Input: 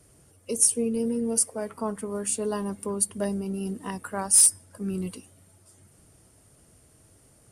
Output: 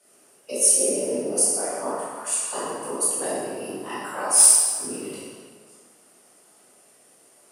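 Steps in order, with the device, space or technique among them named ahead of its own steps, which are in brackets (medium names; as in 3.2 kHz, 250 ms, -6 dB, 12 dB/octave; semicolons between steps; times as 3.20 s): 1.92–2.53 s: inverse Chebyshev high-pass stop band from 460 Hz; whispering ghost (whisper effect; high-pass 490 Hz 12 dB/octave; reverberation RT60 1.7 s, pre-delay 12 ms, DRR -9 dB); trim -3 dB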